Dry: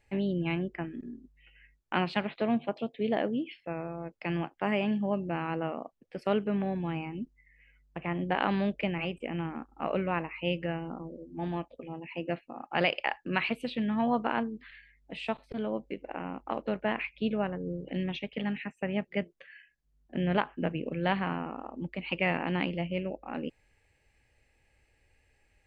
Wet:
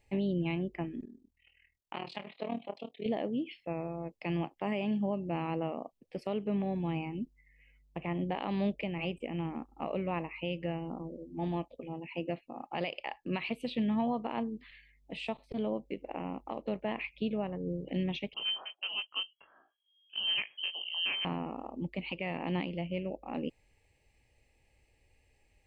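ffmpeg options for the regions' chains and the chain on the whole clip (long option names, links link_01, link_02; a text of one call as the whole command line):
ffmpeg -i in.wav -filter_complex "[0:a]asettb=1/sr,asplit=3[link_01][link_02][link_03];[link_01]atrim=end=1.054[link_04];[link_02]atrim=start=1.05:end=3.06,asetpts=PTS-STARTPTS,afade=type=in:duration=0.004:curve=qsin,afade=type=out:start_time=2.006:duration=0.004:curve=qsin,lowshelf=frequency=360:gain=-11,tremolo=f=40:d=0.889,asplit=2[link_05][link_06];[link_06]adelay=30,volume=-11dB[link_07];[link_05][link_07]amix=inputs=2:normalize=0,atrim=end_sample=88641[link_08];[link_03]atrim=start=3.056[link_09];[link_04][link_08]acrossfade=duration=0.004:curve1=hsin:curve2=qsin[link_10];[link_10][link_09]acrossfade=duration=0.004:curve1=qsin:curve2=hsin,asettb=1/sr,asplit=3[link_11][link_12][link_13];[link_11]atrim=end=18.344[link_14];[link_12]atrim=start=18.34:end=21.25,asetpts=PTS-STARTPTS,afade=type=in:duration=0.004:curve=qsin,afade=type=out:start_time=2.906:duration=0.004:curve=qsin,flanger=delay=17.5:depth=4.9:speed=1.5,lowpass=frequency=2800:width_type=q:width=0.5098,lowpass=frequency=2800:width_type=q:width=0.6013,lowpass=frequency=2800:width_type=q:width=0.9,lowpass=frequency=2800:width_type=q:width=2.563,afreqshift=-3300[link_15];[link_13]atrim=start=21.246[link_16];[link_14][link_15]acrossfade=duration=0.004:curve1=hsin:curve2=qsin[link_17];[link_17][link_16]acrossfade=duration=0.004:curve1=qsin:curve2=hsin,equalizer=frequency=1500:width=3.3:gain=-14.5,alimiter=limit=-23.5dB:level=0:latency=1:release=266" out.wav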